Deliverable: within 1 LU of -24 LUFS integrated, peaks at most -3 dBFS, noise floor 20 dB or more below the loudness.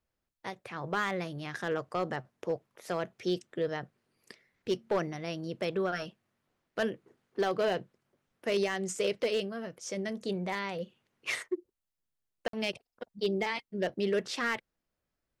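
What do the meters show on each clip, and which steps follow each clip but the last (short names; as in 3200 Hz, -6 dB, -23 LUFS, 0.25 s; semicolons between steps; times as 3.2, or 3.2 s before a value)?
clipped 0.4%; flat tops at -22.5 dBFS; dropouts 1; longest dropout 53 ms; loudness -34.0 LUFS; peak -22.5 dBFS; loudness target -24.0 LUFS
-> clip repair -22.5 dBFS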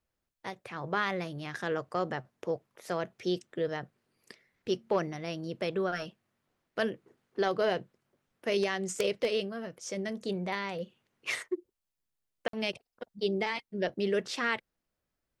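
clipped 0.0%; dropouts 1; longest dropout 53 ms
-> interpolate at 12.48, 53 ms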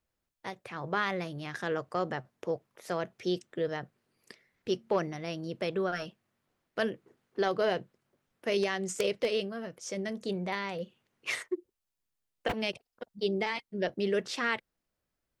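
dropouts 0; loudness -34.0 LUFS; peak -13.5 dBFS; loudness target -24.0 LUFS
-> gain +10 dB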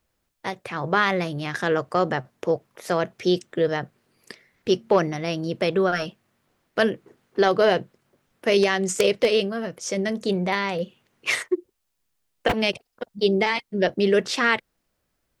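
loudness -24.0 LUFS; peak -3.5 dBFS; noise floor -76 dBFS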